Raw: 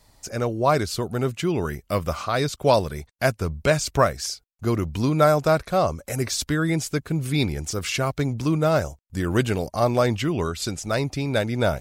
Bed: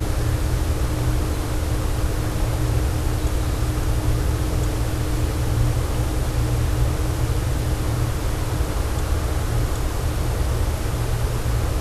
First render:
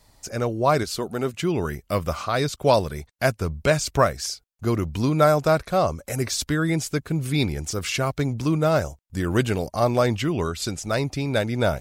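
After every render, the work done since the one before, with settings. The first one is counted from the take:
0:00.83–0:01.34: parametric band 100 Hz −12.5 dB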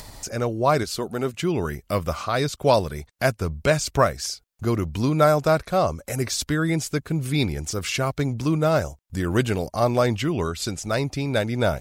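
upward compression, threshold −28 dBFS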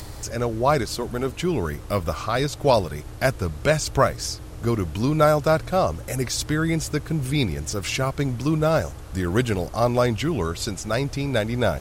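mix in bed −16 dB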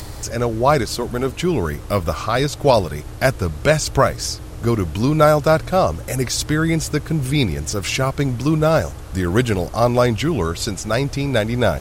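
level +4.5 dB
brickwall limiter −2 dBFS, peak gain reduction 1.5 dB

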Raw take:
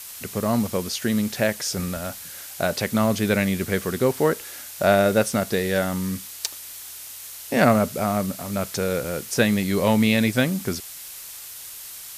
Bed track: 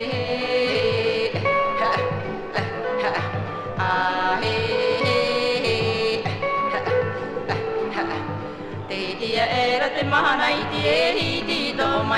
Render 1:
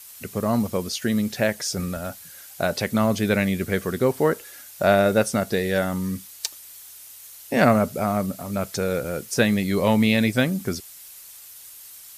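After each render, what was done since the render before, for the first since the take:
broadband denoise 8 dB, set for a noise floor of −39 dBFS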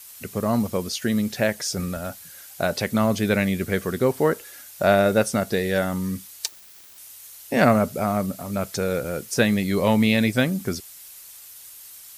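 0:06.48–0:06.98: phase distortion by the signal itself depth 0.067 ms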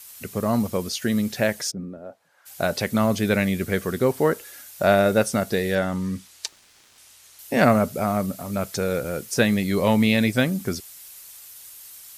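0:01.70–0:02.45: resonant band-pass 190 Hz → 1,100 Hz, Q 2.2
0:05.75–0:07.39: high-frequency loss of the air 51 metres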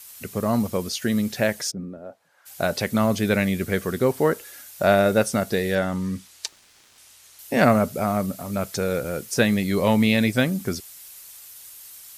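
no processing that can be heard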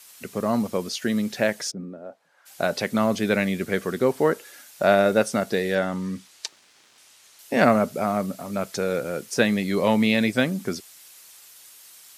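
high-pass filter 170 Hz 12 dB per octave
high-shelf EQ 11,000 Hz −11.5 dB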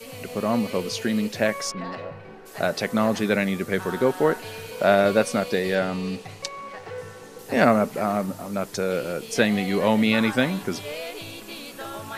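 mix in bed track −14.5 dB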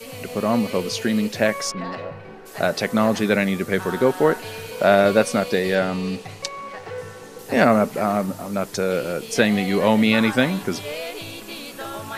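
level +3 dB
brickwall limiter −2 dBFS, peak gain reduction 2.5 dB

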